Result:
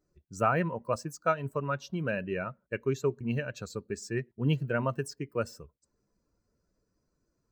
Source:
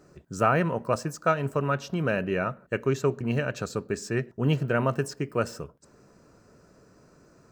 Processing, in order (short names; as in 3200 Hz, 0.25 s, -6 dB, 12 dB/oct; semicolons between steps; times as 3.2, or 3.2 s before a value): per-bin expansion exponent 1.5; gain -2 dB